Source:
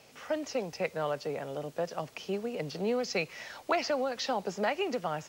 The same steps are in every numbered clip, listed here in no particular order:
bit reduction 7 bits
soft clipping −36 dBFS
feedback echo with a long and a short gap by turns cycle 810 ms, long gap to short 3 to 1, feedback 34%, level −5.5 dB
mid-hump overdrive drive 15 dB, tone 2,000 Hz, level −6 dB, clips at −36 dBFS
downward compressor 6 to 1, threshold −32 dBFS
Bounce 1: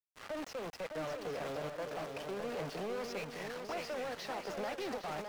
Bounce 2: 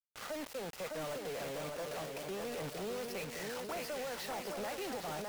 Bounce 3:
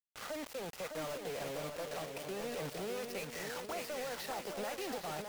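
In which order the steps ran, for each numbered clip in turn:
downward compressor, then soft clipping, then bit reduction, then mid-hump overdrive, then feedback echo with a long and a short gap by turns
mid-hump overdrive, then downward compressor, then bit reduction, then feedback echo with a long and a short gap by turns, then soft clipping
downward compressor, then mid-hump overdrive, then bit reduction, then soft clipping, then feedback echo with a long and a short gap by turns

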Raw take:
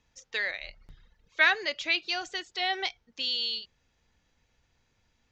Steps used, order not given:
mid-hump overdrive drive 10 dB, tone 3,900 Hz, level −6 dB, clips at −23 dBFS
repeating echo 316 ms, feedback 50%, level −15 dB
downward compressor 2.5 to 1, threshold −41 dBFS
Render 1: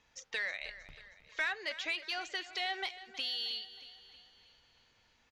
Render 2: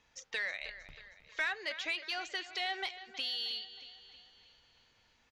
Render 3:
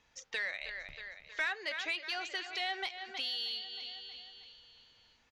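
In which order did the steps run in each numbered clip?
downward compressor, then mid-hump overdrive, then repeating echo
downward compressor, then repeating echo, then mid-hump overdrive
repeating echo, then downward compressor, then mid-hump overdrive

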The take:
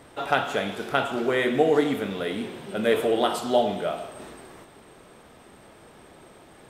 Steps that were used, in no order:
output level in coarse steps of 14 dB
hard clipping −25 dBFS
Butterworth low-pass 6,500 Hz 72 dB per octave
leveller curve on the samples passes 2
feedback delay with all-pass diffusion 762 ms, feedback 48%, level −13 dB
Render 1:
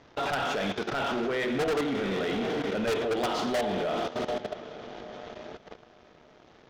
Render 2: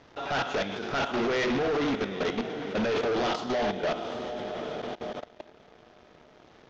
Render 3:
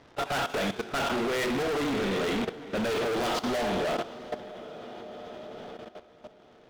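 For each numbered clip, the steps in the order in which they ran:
feedback delay with all-pass diffusion, then leveller curve on the samples, then output level in coarse steps, then Butterworth low-pass, then hard clipping
feedback delay with all-pass diffusion, then output level in coarse steps, then leveller curve on the samples, then hard clipping, then Butterworth low-pass
Butterworth low-pass, then leveller curve on the samples, then feedback delay with all-pass diffusion, then hard clipping, then output level in coarse steps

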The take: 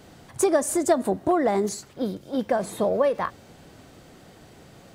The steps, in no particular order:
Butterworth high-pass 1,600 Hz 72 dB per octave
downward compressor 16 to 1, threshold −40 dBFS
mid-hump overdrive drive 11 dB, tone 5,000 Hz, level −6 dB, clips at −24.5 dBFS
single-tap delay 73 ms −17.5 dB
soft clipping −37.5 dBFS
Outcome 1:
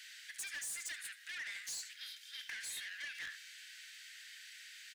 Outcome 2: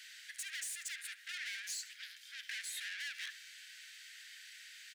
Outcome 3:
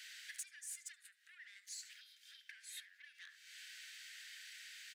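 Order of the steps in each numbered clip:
single-tap delay, then mid-hump overdrive, then Butterworth high-pass, then soft clipping, then downward compressor
soft clipping, then Butterworth high-pass, then downward compressor, then mid-hump overdrive, then single-tap delay
single-tap delay, then downward compressor, then mid-hump overdrive, then soft clipping, then Butterworth high-pass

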